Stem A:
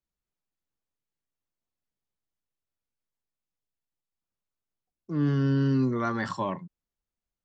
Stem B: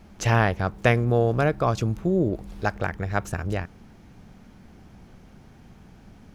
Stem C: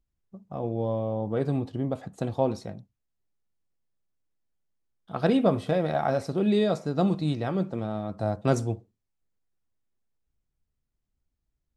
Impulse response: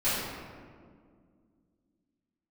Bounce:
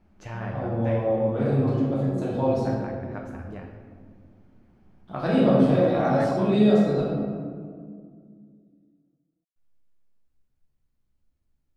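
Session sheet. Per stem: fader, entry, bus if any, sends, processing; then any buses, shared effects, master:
-6.0 dB, 0.00 s, no bus, no send, slow attack 553 ms
-13.5 dB, 0.00 s, bus A, send -13.5 dB, treble shelf 3.7 kHz -9 dB
-2.0 dB, 0.00 s, muted 7.00–9.56 s, bus A, send -8 dB, none
bus A: 0.0 dB, treble shelf 4.6 kHz -10.5 dB; compression, threshold -34 dBFS, peak gain reduction 14.5 dB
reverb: on, RT60 2.0 s, pre-delay 3 ms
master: none

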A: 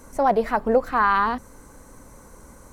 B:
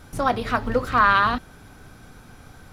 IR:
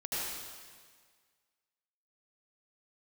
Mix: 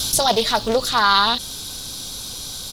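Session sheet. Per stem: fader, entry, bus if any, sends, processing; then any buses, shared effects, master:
0.0 dB, 0.00 s, no send, none
-2.0 dB, 0.7 ms, no send, resonant high shelf 2.7 kHz +12.5 dB, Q 3; level flattener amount 50%; auto duck -9 dB, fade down 0.40 s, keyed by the first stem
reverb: none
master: treble shelf 3 kHz +11.5 dB; loudspeaker Doppler distortion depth 0.28 ms

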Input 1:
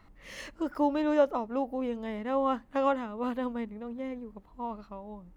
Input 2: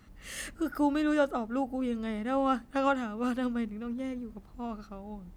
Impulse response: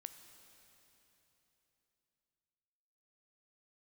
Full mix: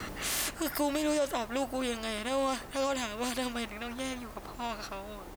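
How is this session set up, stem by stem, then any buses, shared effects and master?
-3.5 dB, 0.00 s, no send, peaking EQ 590 Hz +4.5 dB 1.2 oct
+2.5 dB, 2.2 ms, no send, spectrum-flattening compressor 10:1; auto duck -6 dB, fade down 0.40 s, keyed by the first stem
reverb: none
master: peak limiter -21.5 dBFS, peak gain reduction 9 dB

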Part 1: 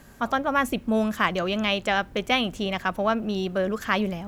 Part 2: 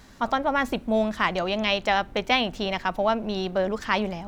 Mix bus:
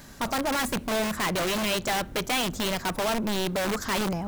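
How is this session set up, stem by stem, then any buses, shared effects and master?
0.0 dB, 0.00 s, no send, integer overflow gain 22.5 dB
-2.0 dB, 0.00 s, no send, treble shelf 4.9 kHz +12 dB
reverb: none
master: saturation -21.5 dBFS, distortion -11 dB

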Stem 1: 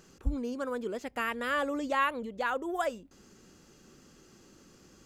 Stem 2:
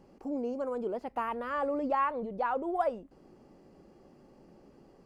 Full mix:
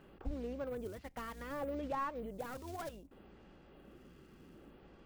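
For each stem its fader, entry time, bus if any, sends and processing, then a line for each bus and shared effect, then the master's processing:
-3.0 dB, 0.00 s, no send, octave divider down 2 oct, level -3 dB; steep low-pass 3.4 kHz 36 dB/octave; slew-rate limiter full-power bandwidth 18 Hz
-2.0 dB, 0.00 s, polarity flipped, no send, short-mantissa float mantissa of 2-bit; lamp-driven phase shifter 0.65 Hz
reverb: none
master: compression 1.5:1, threshold -50 dBFS, peak gain reduction 9 dB

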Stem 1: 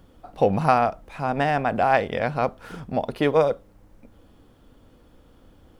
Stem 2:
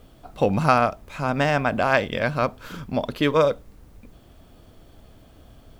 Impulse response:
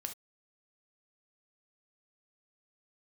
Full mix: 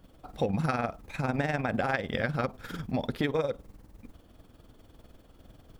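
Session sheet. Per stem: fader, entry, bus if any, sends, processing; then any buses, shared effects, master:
-6.0 dB, 0.00 s, no send, none
-1.0 dB, 0.00 s, no send, expander -45 dBFS; AM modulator 20 Hz, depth 85%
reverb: none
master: compression 12:1, threshold -24 dBFS, peak gain reduction 9.5 dB

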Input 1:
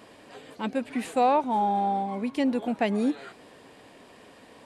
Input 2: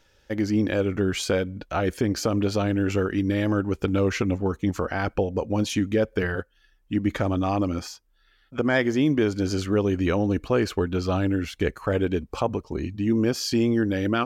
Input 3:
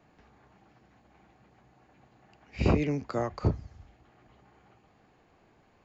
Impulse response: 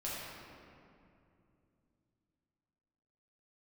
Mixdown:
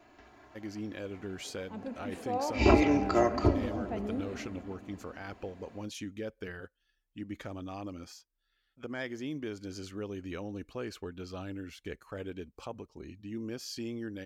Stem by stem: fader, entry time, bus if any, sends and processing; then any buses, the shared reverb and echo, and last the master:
-16.0 dB, 1.10 s, send -9 dB, transient shaper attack -2 dB, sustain +7 dB; tilt shelf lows +8 dB, about 1.1 kHz
-12.0 dB, 0.25 s, no send, peaking EQ 900 Hz -4.5 dB 2.5 oct
+2.5 dB, 0.00 s, send -12 dB, comb 3 ms, depth 82%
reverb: on, RT60 2.6 s, pre-delay 6 ms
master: bass shelf 250 Hz -7 dB

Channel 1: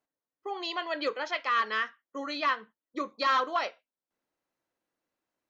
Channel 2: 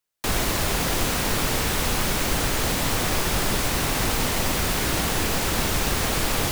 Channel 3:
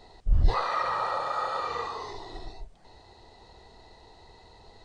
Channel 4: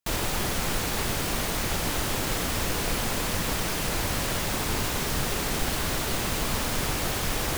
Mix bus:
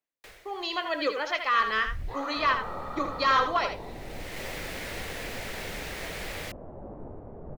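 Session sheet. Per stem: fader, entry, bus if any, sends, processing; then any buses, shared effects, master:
-9.0 dB, 0.00 s, no send, echo send -8 dB, level rider gain up to 11.5 dB
-18.5 dB, 0.00 s, no send, no echo send, graphic EQ 125/250/500/1000/2000/4000 Hz -4/-9/+10/-3/+12/+3 dB; auto duck -20 dB, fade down 0.35 s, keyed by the first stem
-15.5 dB, 1.60 s, no send, no echo send, low-pass 2.8 kHz; level flattener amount 50%
-2.5 dB, 2.30 s, no send, echo send -6.5 dB, four-pole ladder low-pass 790 Hz, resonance 35%; detune thickener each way 45 cents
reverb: none
echo: delay 78 ms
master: none

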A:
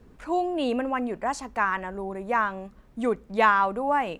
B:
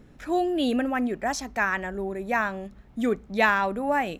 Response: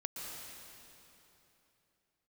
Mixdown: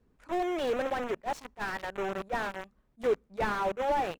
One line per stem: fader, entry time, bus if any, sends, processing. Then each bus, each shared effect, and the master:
-15.5 dB, 0.00 s, no send, none
-2.5 dB, 1.6 ms, no send, resonant low shelf 310 Hz -12 dB, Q 1.5; bit crusher 5-bit; slew-rate limiter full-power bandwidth 49 Hz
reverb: none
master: attacks held to a fixed rise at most 470 dB/s

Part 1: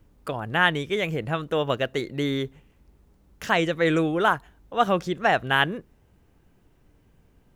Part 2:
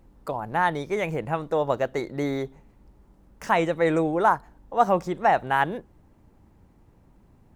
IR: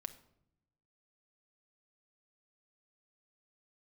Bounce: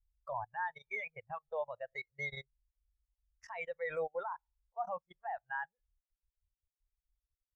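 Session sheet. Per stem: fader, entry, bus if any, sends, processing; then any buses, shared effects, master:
-2.0 dB, 0.00 s, no send, level-controlled noise filter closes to 760 Hz, open at -21.5 dBFS; treble shelf 3.5 kHz -11.5 dB; compression 16:1, threshold -30 dBFS, peak gain reduction 16 dB; auto duck -6 dB, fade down 1.95 s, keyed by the second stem
-0.5 dB, 1.8 ms, send -6 dB, peaking EQ 160 Hz -5.5 dB 0.24 oct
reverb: on, RT60 0.75 s, pre-delay 6 ms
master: amplifier tone stack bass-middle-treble 10-0-10; level held to a coarse grid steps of 21 dB; spectral contrast expander 2.5:1

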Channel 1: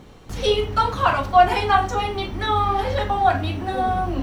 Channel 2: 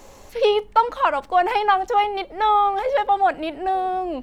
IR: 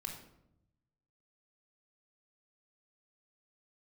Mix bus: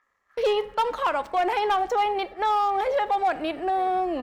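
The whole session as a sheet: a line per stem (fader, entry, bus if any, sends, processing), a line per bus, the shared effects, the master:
-19.5 dB, 0.00 s, no send, median filter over 41 samples; Chebyshev band-pass 200–6600 Hz, order 2; ring modulator 1.5 kHz
-1.5 dB, 16 ms, send -13 dB, high-pass 63 Hz 6 dB/octave; gate -34 dBFS, range -36 dB; overload inside the chain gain 12.5 dB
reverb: on, RT60 0.80 s, pre-delay 3 ms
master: peak limiter -17 dBFS, peak gain reduction 6 dB

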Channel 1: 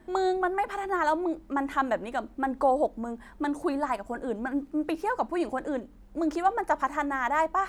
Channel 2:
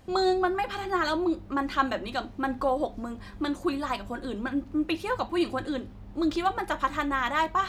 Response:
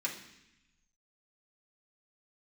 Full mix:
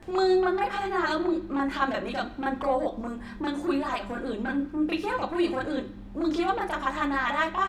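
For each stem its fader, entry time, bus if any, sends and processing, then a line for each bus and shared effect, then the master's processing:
-6.0 dB, 0.00 s, no send, peak limiter -20.5 dBFS, peak gain reduction 8 dB; compression, threshold -30 dBFS, peak gain reduction 6.5 dB; sine folder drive 5 dB, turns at -22 dBFS
-2.5 dB, 26 ms, send -7.5 dB, upward compressor, threshold -39 dBFS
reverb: on, RT60 0.85 s, pre-delay 3 ms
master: treble shelf 8.5 kHz -9.5 dB

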